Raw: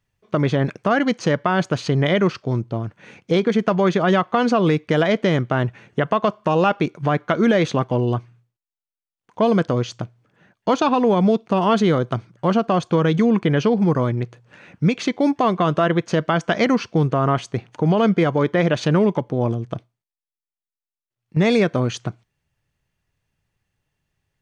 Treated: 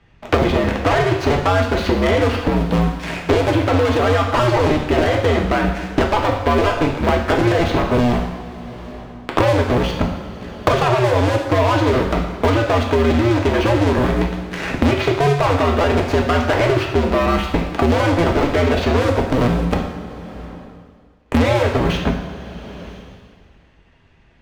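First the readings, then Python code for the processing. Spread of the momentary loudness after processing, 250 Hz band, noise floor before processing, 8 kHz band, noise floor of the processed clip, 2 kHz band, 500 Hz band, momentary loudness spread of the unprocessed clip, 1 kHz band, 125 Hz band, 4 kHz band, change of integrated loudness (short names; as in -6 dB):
12 LU, +0.5 dB, under -85 dBFS, n/a, -50 dBFS, +4.5 dB, +3.0 dB, 8 LU, +3.5 dB, +3.0 dB, +4.5 dB, +2.5 dB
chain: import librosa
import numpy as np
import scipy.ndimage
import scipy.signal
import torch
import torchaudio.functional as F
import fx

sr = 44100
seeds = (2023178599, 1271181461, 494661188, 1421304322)

p1 = fx.cycle_switch(x, sr, every=2, mode='inverted')
p2 = scipy.signal.sosfilt(scipy.signal.butter(2, 3100.0, 'lowpass', fs=sr, output='sos'), p1)
p3 = fx.over_compress(p2, sr, threshold_db=-21.0, ratio=-1.0)
p4 = p2 + (p3 * 10.0 ** (-2.0 / 20.0))
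p5 = fx.leveller(p4, sr, passes=3)
p6 = fx.rev_double_slope(p5, sr, seeds[0], early_s=0.64, late_s=1.8, knee_db=-18, drr_db=0.0)
p7 = fx.band_squash(p6, sr, depth_pct=100)
y = p7 * 10.0 ** (-11.5 / 20.0)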